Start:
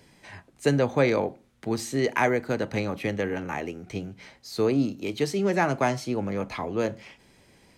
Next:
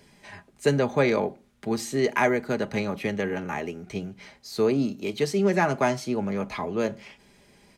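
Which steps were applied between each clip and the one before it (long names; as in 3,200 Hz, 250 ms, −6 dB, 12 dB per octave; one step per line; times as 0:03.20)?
comb filter 4.9 ms, depth 40%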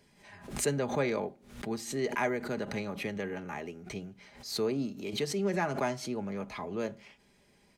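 background raised ahead of every attack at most 100 dB per second
level −8.5 dB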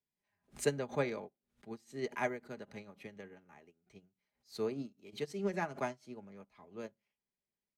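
expander for the loud parts 2.5 to 1, over −47 dBFS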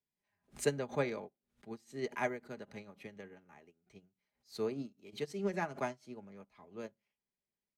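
no processing that can be heard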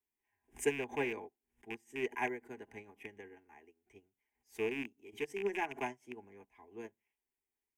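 loose part that buzzes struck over −46 dBFS, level −30 dBFS
phaser with its sweep stopped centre 860 Hz, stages 8
level +2 dB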